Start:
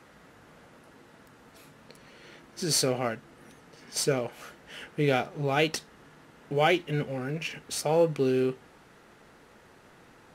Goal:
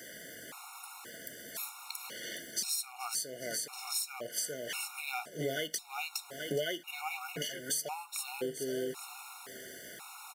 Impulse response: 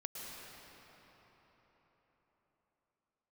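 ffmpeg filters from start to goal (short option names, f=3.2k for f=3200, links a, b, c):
-filter_complex "[0:a]aemphasis=mode=production:type=riaa,asplit=2[a][b];[b]aecho=0:1:415|830|1245:0.299|0.0806|0.0218[c];[a][c]amix=inputs=2:normalize=0,acompressor=threshold=-39dB:ratio=6,afftfilt=real='re*gt(sin(2*PI*0.95*pts/sr)*(1-2*mod(floor(b*sr/1024/720),2)),0)':imag='im*gt(sin(2*PI*0.95*pts/sr)*(1-2*mod(floor(b*sr/1024/720),2)),0)':win_size=1024:overlap=0.75,volume=8dB"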